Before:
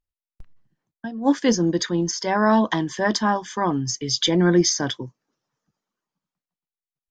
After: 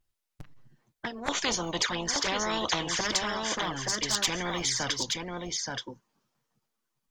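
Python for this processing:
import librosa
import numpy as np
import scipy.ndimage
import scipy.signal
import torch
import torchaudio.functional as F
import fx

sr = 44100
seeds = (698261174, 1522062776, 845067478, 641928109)

y = fx.peak_eq(x, sr, hz=910.0, db=10.5, octaves=2.5, at=(1.28, 3.01))
y = fx.env_flanger(y, sr, rest_ms=8.7, full_db=-13.5)
y = y + 10.0 ** (-12.0 / 20.0) * np.pad(y, (int(876 * sr / 1000.0), 0))[:len(y)]
y = fx.spectral_comp(y, sr, ratio=4.0)
y = F.gain(torch.from_numpy(y), -8.5).numpy()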